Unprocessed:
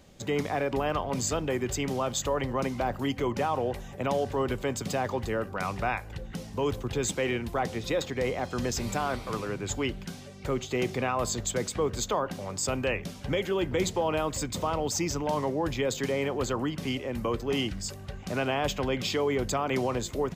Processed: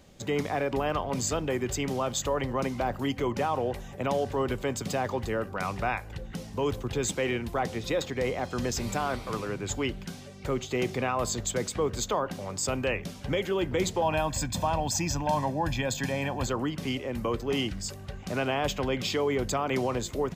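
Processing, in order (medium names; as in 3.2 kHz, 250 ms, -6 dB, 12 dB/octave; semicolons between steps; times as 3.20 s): 14.02–16.47 s: comb 1.2 ms, depth 70%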